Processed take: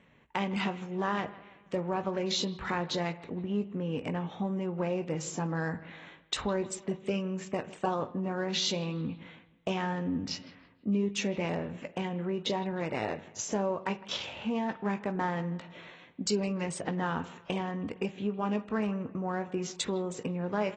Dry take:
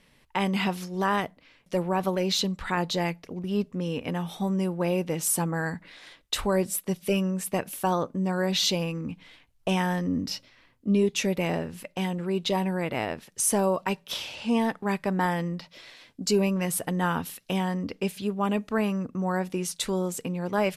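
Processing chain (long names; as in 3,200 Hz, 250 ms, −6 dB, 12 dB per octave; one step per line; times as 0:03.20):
adaptive Wiener filter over 9 samples
high-pass filter 63 Hz 12 dB per octave
on a send at −17.5 dB: convolution reverb, pre-delay 45 ms
on the sum: downward compressor 2 to 1, threshold −32 dBFS, peak gain reduction 8 dB
double-tracking delay 19 ms −11.5 dB
bucket-brigade delay 159 ms, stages 4,096, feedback 47%, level −20 dB
reversed playback
upward compression, threshold −44 dBFS
reversed playback
AAC 24 kbit/s 24,000 Hz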